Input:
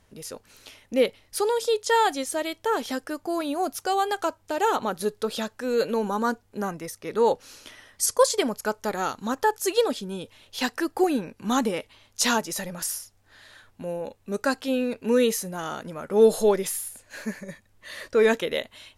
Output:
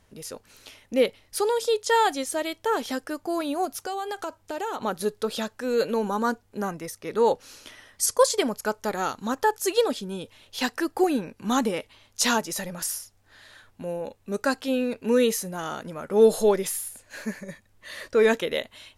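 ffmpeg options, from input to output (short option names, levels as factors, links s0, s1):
-filter_complex "[0:a]asettb=1/sr,asplit=3[s0][s1][s2];[s0]atrim=end=3.654[s3];[s1]atrim=start=3.65:end=4.81,asetpts=PTS-STARTPTS,afade=t=in:d=0.004:c=qsin,afade=t=out:st=1.156:d=0.004:c=qsin,acompressor=threshold=0.0355:ratio=3:attack=3.2:release=140:knee=1:detection=peak[s4];[s2]atrim=start=4.806[s5];[s3][s4]acrossfade=d=0.004:c1=hsin:c2=qsin[s6];[s6][s5]acrossfade=d=0.004:c1=qsin:c2=hsin"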